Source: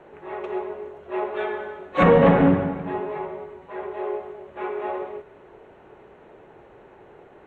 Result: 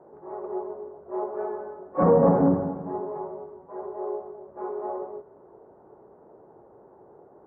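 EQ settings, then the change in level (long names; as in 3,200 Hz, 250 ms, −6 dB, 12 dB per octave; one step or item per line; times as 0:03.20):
high-pass filter 150 Hz 6 dB per octave
low-pass filter 1,100 Hz 24 dB per octave
high-frequency loss of the air 320 metres
−1.5 dB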